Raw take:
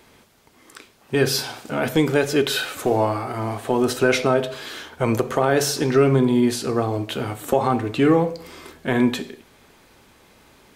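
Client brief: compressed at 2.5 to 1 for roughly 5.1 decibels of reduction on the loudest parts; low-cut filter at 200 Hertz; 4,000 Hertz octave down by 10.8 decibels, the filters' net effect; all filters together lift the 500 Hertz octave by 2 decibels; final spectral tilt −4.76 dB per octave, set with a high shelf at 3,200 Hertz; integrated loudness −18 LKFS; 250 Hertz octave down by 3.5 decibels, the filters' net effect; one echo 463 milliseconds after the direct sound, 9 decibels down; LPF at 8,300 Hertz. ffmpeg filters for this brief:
ffmpeg -i in.wav -af "highpass=200,lowpass=8300,equalizer=frequency=250:width_type=o:gain=-4.5,equalizer=frequency=500:width_type=o:gain=4.5,highshelf=frequency=3200:gain=-7.5,equalizer=frequency=4000:width_type=o:gain=-8,acompressor=threshold=-19dB:ratio=2.5,aecho=1:1:463:0.355,volume=6.5dB" out.wav

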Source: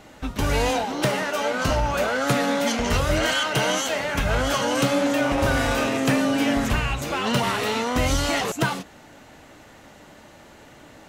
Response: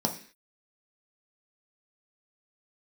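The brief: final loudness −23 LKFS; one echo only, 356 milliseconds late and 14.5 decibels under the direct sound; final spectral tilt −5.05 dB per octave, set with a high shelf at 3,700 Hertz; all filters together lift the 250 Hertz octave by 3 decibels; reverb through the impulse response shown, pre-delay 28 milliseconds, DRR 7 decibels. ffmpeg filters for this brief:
-filter_complex "[0:a]equalizer=frequency=250:width_type=o:gain=3.5,highshelf=frequency=3700:gain=-8.5,aecho=1:1:356:0.188,asplit=2[link_01][link_02];[1:a]atrim=start_sample=2205,adelay=28[link_03];[link_02][link_03]afir=irnorm=-1:irlink=0,volume=-15dB[link_04];[link_01][link_04]amix=inputs=2:normalize=0,volume=-2.5dB"

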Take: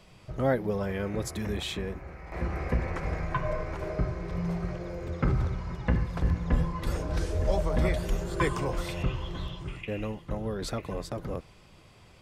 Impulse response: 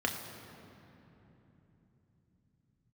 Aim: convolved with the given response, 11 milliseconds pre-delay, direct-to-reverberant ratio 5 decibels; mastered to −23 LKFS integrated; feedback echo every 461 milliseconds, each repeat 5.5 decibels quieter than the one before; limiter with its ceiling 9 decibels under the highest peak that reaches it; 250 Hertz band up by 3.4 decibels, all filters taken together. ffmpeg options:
-filter_complex "[0:a]equalizer=frequency=250:width_type=o:gain=5,alimiter=limit=-19.5dB:level=0:latency=1,aecho=1:1:461|922|1383|1844|2305|2766|3227:0.531|0.281|0.149|0.079|0.0419|0.0222|0.0118,asplit=2[link_01][link_02];[1:a]atrim=start_sample=2205,adelay=11[link_03];[link_02][link_03]afir=irnorm=-1:irlink=0,volume=-12.5dB[link_04];[link_01][link_04]amix=inputs=2:normalize=0,volume=6dB"

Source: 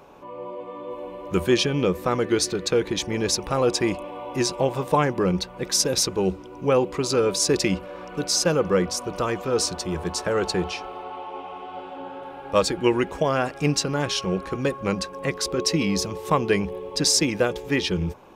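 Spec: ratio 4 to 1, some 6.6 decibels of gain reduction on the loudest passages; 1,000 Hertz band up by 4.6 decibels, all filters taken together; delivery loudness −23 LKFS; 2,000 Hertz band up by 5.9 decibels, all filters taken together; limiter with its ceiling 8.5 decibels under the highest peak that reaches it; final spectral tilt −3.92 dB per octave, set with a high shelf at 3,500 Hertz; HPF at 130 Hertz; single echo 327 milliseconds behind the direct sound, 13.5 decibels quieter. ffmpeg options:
ffmpeg -i in.wav -af "highpass=130,equalizer=frequency=1000:width_type=o:gain=4,equalizer=frequency=2000:width_type=o:gain=9,highshelf=frequency=3500:gain=-9,acompressor=threshold=-20dB:ratio=4,alimiter=limit=-14.5dB:level=0:latency=1,aecho=1:1:327:0.211,volume=4.5dB" out.wav

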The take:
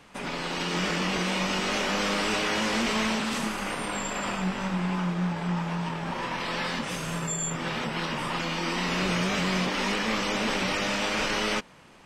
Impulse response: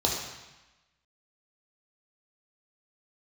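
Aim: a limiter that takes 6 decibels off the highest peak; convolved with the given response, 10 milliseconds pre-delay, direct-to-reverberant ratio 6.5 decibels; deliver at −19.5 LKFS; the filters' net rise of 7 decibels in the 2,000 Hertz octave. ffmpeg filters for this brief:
-filter_complex "[0:a]equalizer=frequency=2000:width_type=o:gain=8.5,alimiter=limit=-18.5dB:level=0:latency=1,asplit=2[link_01][link_02];[1:a]atrim=start_sample=2205,adelay=10[link_03];[link_02][link_03]afir=irnorm=-1:irlink=0,volume=-17.5dB[link_04];[link_01][link_04]amix=inputs=2:normalize=0,volume=6dB"

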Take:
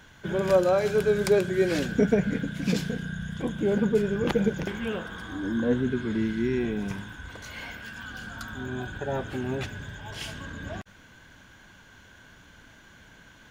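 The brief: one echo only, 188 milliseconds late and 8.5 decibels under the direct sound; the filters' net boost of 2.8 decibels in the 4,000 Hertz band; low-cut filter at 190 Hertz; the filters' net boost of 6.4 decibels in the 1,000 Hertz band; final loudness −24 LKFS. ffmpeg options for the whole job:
ffmpeg -i in.wav -af "highpass=190,equalizer=frequency=1000:width_type=o:gain=8.5,equalizer=frequency=4000:width_type=o:gain=3,aecho=1:1:188:0.376,volume=2.5dB" out.wav

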